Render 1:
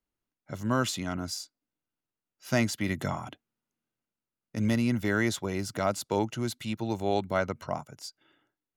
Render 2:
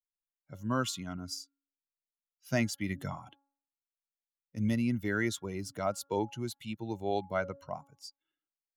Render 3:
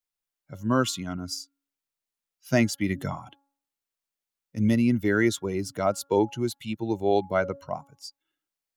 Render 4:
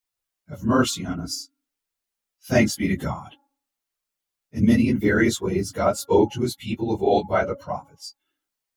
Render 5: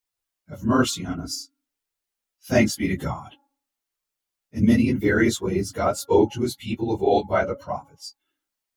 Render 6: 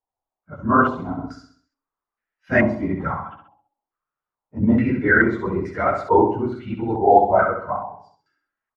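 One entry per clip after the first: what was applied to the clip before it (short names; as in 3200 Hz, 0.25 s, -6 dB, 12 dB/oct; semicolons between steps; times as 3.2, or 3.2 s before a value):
per-bin expansion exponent 1.5; de-hum 278.6 Hz, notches 6; gain -2 dB
dynamic EQ 370 Hz, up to +5 dB, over -44 dBFS, Q 1.2; gain +6 dB
phase scrambler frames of 50 ms; gain +4 dB
flange 1 Hz, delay 2.1 ms, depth 1.6 ms, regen -74%; gain +4 dB
on a send: feedback echo 65 ms, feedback 46%, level -6 dB; on the sum: stepped low-pass 2.3 Hz 830–1800 Hz; gain -1 dB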